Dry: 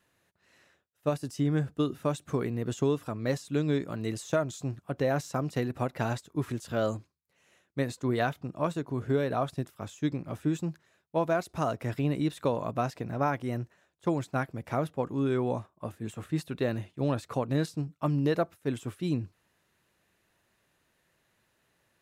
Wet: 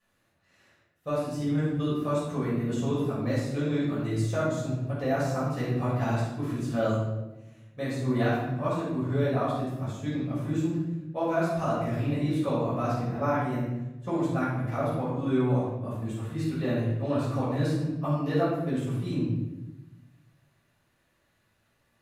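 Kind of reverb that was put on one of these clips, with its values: shoebox room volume 410 m³, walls mixed, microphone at 5.9 m; gain -12 dB

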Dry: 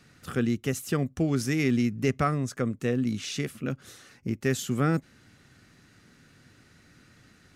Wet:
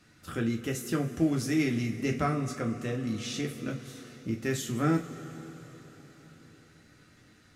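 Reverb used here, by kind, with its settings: two-slope reverb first 0.25 s, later 4.9 s, from -21 dB, DRR 0.5 dB; gain -5 dB

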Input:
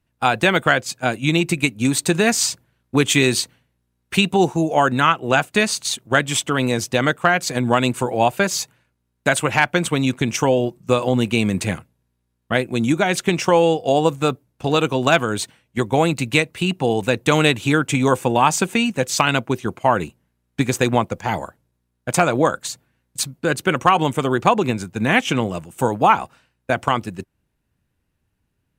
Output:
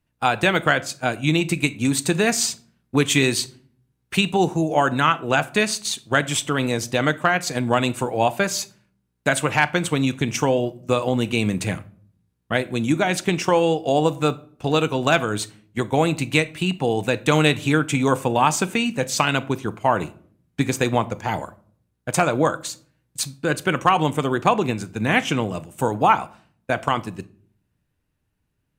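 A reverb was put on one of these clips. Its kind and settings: shoebox room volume 560 m³, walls furnished, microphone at 0.44 m; gain -2.5 dB

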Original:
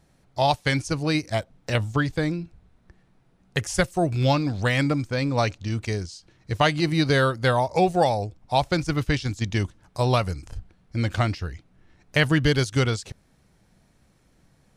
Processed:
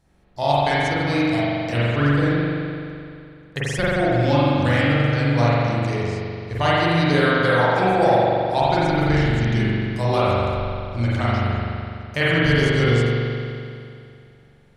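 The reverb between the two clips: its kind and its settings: spring tank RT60 2.5 s, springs 42 ms, chirp 45 ms, DRR -9 dB; gain -4.5 dB

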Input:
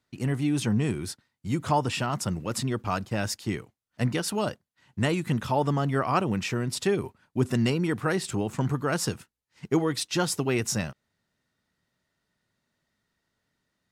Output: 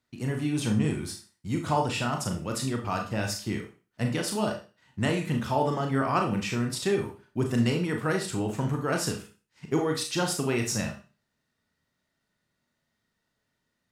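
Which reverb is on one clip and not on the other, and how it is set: Schroeder reverb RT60 0.35 s, combs from 26 ms, DRR 2.5 dB; gain -2.5 dB

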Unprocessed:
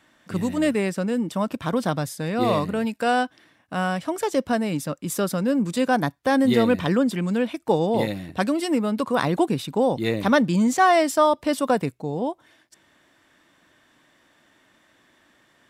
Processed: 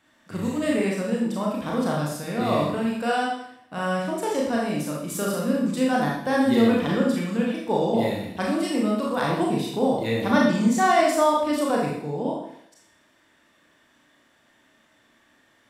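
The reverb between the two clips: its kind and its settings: Schroeder reverb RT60 0.7 s, combs from 27 ms, DRR -3.5 dB; gain -6 dB

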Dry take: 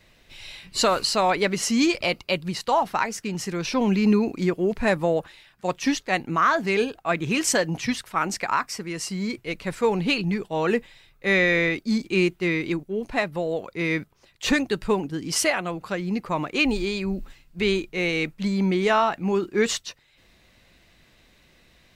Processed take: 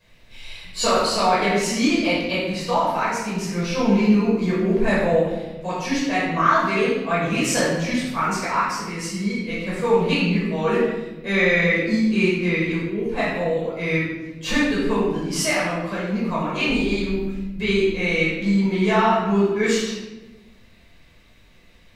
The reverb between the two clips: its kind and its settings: shoebox room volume 560 m³, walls mixed, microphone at 5.4 m; gain -9.5 dB

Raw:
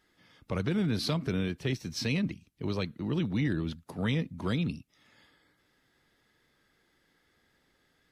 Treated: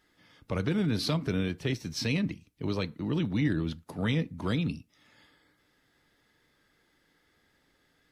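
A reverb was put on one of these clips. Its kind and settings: FDN reverb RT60 0.31 s, low-frequency decay 0.8×, high-frequency decay 0.65×, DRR 14.5 dB; gain +1 dB

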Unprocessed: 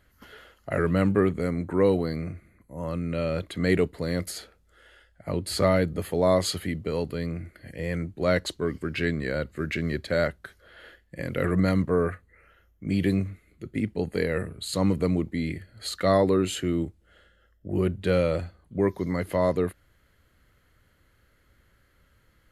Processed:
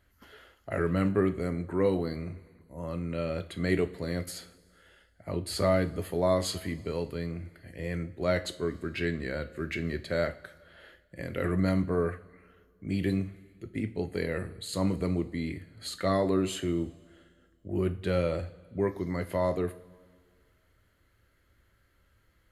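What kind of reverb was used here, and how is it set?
two-slope reverb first 0.36 s, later 2 s, from -18 dB, DRR 8 dB; gain -5 dB

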